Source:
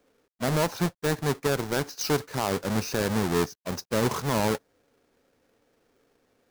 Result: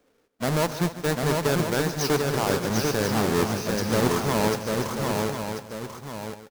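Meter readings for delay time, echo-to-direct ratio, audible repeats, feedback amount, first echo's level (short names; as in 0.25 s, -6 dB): 0.149 s, -1.0 dB, 11, no steady repeat, -14.5 dB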